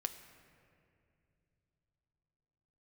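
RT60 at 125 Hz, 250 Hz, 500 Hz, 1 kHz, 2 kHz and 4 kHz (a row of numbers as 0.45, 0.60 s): 4.6, 3.9, 3.1, 2.2, 2.3, 1.5 s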